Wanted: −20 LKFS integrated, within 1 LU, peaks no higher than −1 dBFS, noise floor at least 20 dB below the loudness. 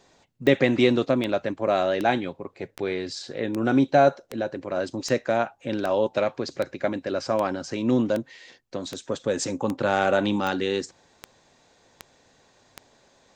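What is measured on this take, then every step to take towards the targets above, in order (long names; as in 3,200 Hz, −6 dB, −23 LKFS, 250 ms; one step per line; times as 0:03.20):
number of clicks 17; integrated loudness −25.0 LKFS; sample peak −5.0 dBFS; target loudness −20.0 LKFS
→ click removal
level +5 dB
brickwall limiter −1 dBFS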